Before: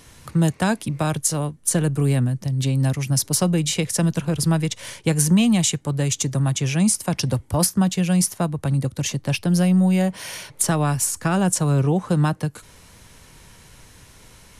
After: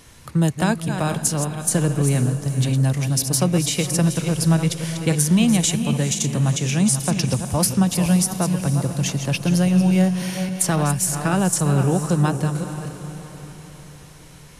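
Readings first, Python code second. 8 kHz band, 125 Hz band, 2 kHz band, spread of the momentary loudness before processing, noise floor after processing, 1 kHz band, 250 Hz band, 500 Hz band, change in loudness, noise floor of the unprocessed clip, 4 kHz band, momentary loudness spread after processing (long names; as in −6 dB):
+1.0 dB, +1.0 dB, +1.0 dB, 6 LU, −43 dBFS, +1.0 dB, +1.0 dB, +1.0 dB, +1.0 dB, −49 dBFS, +1.0 dB, 7 LU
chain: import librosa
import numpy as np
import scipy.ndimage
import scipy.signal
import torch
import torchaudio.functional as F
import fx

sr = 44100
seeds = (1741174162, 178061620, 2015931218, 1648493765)

y = fx.reverse_delay(x, sr, ms=269, wet_db=-8.5)
y = fx.echo_diffused(y, sr, ms=472, feedback_pct=49, wet_db=-11.5)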